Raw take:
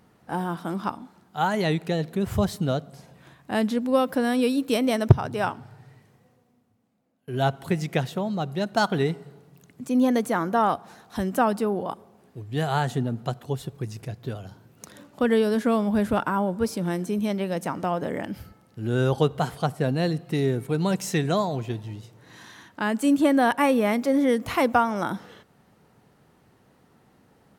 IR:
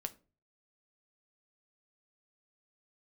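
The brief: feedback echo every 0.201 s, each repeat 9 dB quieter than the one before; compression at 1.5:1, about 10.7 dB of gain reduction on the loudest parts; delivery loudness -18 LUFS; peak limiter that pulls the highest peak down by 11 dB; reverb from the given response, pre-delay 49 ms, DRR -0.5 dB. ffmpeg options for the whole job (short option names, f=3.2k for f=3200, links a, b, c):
-filter_complex "[0:a]acompressor=threshold=-39dB:ratio=1.5,alimiter=level_in=1dB:limit=-24dB:level=0:latency=1,volume=-1dB,aecho=1:1:201|402|603|804:0.355|0.124|0.0435|0.0152,asplit=2[a][b];[1:a]atrim=start_sample=2205,adelay=49[c];[b][c]afir=irnorm=-1:irlink=0,volume=2.5dB[d];[a][d]amix=inputs=2:normalize=0,volume=13.5dB"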